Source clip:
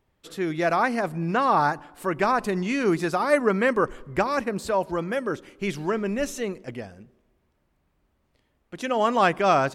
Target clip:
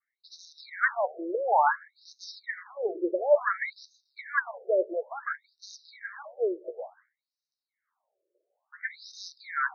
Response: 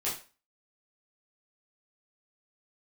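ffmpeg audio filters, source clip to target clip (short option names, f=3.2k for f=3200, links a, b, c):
-filter_complex "[0:a]asettb=1/sr,asplit=3[a][b][c];[a]atrim=end=6.604[d];[b]atrim=start=6.6:end=9.15,asetpts=PTS-STARTPTS,afade=t=in:d=0.004:c=qsin,afade=t=out:st=2.546:d=0.004:c=qsin,asplit=2[e][f];[f]adelay=14,volume=-3.5dB[g];[e][g]amix=inputs=2:normalize=0,atrim=end_sample=112455[h];[c]atrim=start=9.146[i];[d][h]acrossfade=d=0.004:c1=hsin:c2=qsin[j];[j][i]acrossfade=d=0.004:c1=qsin:c2=hsin,asplit=2[k][l];[l]acrusher=bits=5:dc=4:mix=0:aa=0.000001,volume=-8dB[m];[k][m]amix=inputs=2:normalize=0,flanger=delay=6.3:depth=7.6:regen=76:speed=1.4:shape=triangular,adynamicequalizer=threshold=0.00447:dfrequency=1700:dqfactor=6.5:tfrequency=1700:tqfactor=6.5:attack=5:release=100:ratio=0.375:range=3.5:mode=boostabove:tftype=bell,asuperstop=centerf=2900:order=20:qfactor=1.9,afftfilt=real='re*between(b*sr/1024,440*pow(4700/440,0.5+0.5*sin(2*PI*0.57*pts/sr))/1.41,440*pow(4700/440,0.5+0.5*sin(2*PI*0.57*pts/sr))*1.41)':imag='im*between(b*sr/1024,440*pow(4700/440,0.5+0.5*sin(2*PI*0.57*pts/sr))/1.41,440*pow(4700/440,0.5+0.5*sin(2*PI*0.57*pts/sr))*1.41)':win_size=1024:overlap=0.75,volume=2.5dB"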